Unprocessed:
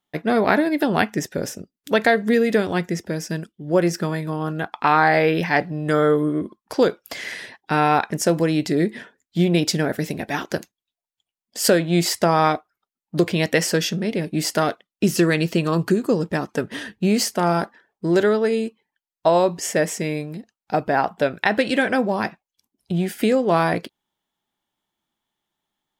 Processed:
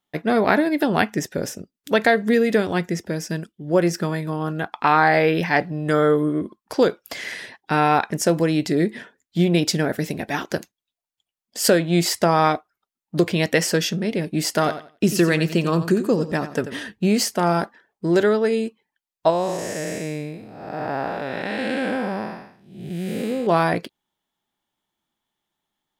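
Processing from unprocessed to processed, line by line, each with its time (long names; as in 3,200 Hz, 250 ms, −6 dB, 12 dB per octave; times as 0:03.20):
0:14.52–0:16.78: repeating echo 89 ms, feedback 22%, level −12 dB
0:19.30–0:23.47: spectrum smeared in time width 328 ms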